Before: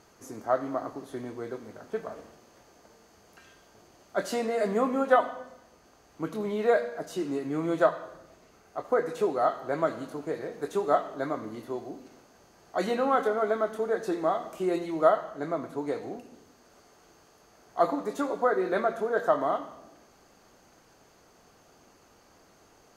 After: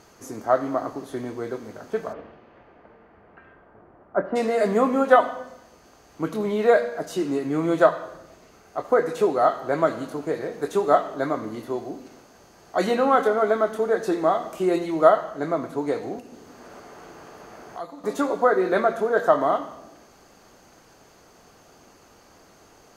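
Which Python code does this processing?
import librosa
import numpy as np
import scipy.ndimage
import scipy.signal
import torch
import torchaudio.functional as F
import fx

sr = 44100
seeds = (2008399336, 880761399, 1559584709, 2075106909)

y = fx.lowpass(x, sr, hz=fx.line((2.12, 3200.0), (4.35, 1400.0)), slope=24, at=(2.12, 4.35), fade=0.02)
y = fx.band_squash(y, sr, depth_pct=100, at=(16.18, 18.04))
y = y * 10.0 ** (6.0 / 20.0)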